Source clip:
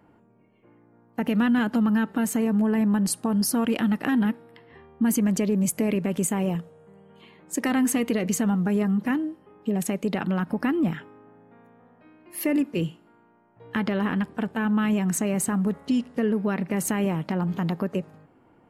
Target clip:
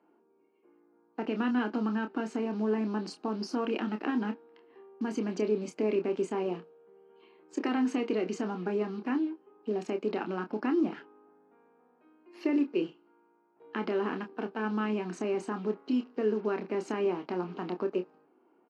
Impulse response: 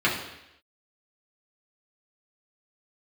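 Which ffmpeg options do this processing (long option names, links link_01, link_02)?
-filter_complex "[0:a]asplit=2[link_01][link_02];[link_02]acrusher=bits=5:mix=0:aa=0.5,volume=-4.5dB[link_03];[link_01][link_03]amix=inputs=2:normalize=0,highpass=frequency=260:width=0.5412,highpass=frequency=260:width=1.3066,equalizer=frequency=380:width_type=q:width=4:gain=7,equalizer=frequency=560:width_type=q:width=4:gain=-5,equalizer=frequency=1900:width_type=q:width=4:gain=-8,equalizer=frequency=3500:width_type=q:width=4:gain=-8,lowpass=frequency=4600:width=0.5412,lowpass=frequency=4600:width=1.3066,asplit=2[link_04][link_05];[link_05]adelay=28,volume=-7.5dB[link_06];[link_04][link_06]amix=inputs=2:normalize=0,volume=-8.5dB"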